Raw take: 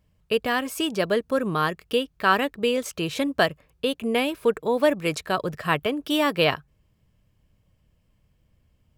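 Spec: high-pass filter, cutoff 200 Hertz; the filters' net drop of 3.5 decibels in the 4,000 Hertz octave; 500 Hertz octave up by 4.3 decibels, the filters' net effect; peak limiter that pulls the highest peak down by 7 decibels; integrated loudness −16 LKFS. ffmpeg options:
ffmpeg -i in.wav -af "highpass=200,equalizer=frequency=500:width_type=o:gain=5,equalizer=frequency=4000:width_type=o:gain=-5.5,volume=8dB,alimiter=limit=-3.5dB:level=0:latency=1" out.wav

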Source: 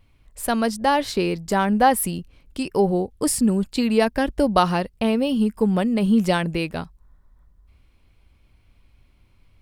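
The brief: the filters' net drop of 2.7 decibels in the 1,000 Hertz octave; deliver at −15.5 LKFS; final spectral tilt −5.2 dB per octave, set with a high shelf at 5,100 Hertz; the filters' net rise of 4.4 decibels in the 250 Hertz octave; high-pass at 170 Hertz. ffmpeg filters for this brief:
ffmpeg -i in.wav -af "highpass=170,equalizer=frequency=250:width_type=o:gain=7,equalizer=frequency=1000:width_type=o:gain=-4.5,highshelf=frequency=5100:gain=4,volume=3.5dB" out.wav

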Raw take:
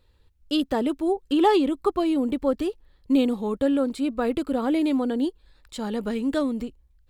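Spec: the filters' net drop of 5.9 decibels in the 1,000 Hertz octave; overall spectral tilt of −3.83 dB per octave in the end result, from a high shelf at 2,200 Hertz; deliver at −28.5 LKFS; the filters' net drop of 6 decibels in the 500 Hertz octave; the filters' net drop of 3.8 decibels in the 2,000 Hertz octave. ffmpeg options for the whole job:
ffmpeg -i in.wav -af "equalizer=frequency=500:width_type=o:gain=-7,equalizer=frequency=1000:width_type=o:gain=-4.5,equalizer=frequency=2000:width_type=o:gain=-5.5,highshelf=frequency=2200:gain=3.5,volume=-1dB" out.wav

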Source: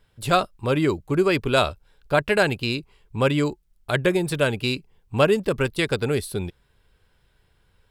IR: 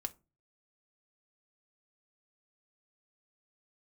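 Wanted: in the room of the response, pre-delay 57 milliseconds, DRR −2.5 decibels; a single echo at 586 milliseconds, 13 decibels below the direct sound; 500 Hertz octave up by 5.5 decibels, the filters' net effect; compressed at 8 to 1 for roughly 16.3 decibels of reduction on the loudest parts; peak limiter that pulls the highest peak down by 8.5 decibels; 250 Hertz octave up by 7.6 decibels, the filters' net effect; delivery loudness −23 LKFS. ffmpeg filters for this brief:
-filter_complex "[0:a]equalizer=frequency=250:width_type=o:gain=9,equalizer=frequency=500:width_type=o:gain=4,acompressor=threshold=-27dB:ratio=8,alimiter=limit=-23dB:level=0:latency=1,aecho=1:1:586:0.224,asplit=2[link_01][link_02];[1:a]atrim=start_sample=2205,adelay=57[link_03];[link_02][link_03]afir=irnorm=-1:irlink=0,volume=4dB[link_04];[link_01][link_04]amix=inputs=2:normalize=0,volume=6dB"

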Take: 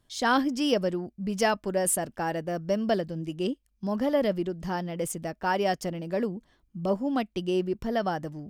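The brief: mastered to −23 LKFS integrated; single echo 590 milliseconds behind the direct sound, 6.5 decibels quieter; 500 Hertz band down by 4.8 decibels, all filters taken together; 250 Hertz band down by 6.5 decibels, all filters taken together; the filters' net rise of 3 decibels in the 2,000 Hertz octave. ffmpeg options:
ffmpeg -i in.wav -af "equalizer=frequency=250:width_type=o:gain=-7.5,equalizer=frequency=500:width_type=o:gain=-4.5,equalizer=frequency=2000:width_type=o:gain=4.5,aecho=1:1:590:0.473,volume=7.5dB" out.wav

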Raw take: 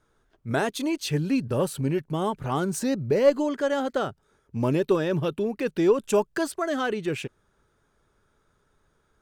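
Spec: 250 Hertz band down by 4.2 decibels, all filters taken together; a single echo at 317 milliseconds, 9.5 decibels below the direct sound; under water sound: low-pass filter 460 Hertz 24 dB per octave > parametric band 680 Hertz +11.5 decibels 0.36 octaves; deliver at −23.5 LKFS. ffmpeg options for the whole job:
ffmpeg -i in.wav -af "lowpass=frequency=460:width=0.5412,lowpass=frequency=460:width=1.3066,equalizer=frequency=250:width_type=o:gain=-6,equalizer=frequency=680:width_type=o:width=0.36:gain=11.5,aecho=1:1:317:0.335,volume=6.5dB" out.wav

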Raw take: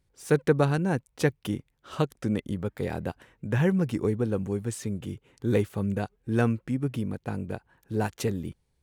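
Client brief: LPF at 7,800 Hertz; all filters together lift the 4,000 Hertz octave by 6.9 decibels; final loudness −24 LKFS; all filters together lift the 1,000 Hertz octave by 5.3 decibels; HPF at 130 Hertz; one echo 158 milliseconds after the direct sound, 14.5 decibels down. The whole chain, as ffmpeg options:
ffmpeg -i in.wav -af "highpass=130,lowpass=7800,equalizer=frequency=1000:width_type=o:gain=7,equalizer=frequency=4000:width_type=o:gain=8.5,aecho=1:1:158:0.188,volume=4.5dB" out.wav

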